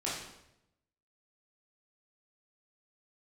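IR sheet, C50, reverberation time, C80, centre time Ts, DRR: 1.5 dB, 0.85 s, 5.0 dB, 57 ms, −7.5 dB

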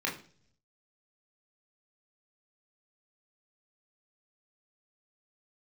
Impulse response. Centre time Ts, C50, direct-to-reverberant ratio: 25 ms, 10.0 dB, −2.5 dB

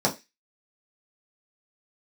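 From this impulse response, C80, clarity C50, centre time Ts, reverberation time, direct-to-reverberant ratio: 22.5 dB, 16.0 dB, 13 ms, 0.20 s, −4.0 dB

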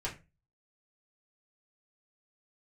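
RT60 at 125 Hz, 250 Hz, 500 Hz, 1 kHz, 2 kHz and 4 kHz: 0.45, 0.35, 0.30, 0.25, 0.25, 0.20 seconds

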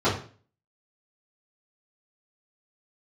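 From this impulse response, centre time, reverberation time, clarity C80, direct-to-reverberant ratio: 31 ms, 0.40 s, 12.0 dB, −11.0 dB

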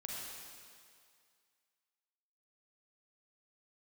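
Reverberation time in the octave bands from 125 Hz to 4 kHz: 1.9, 1.9, 2.1, 2.2, 2.1, 2.1 seconds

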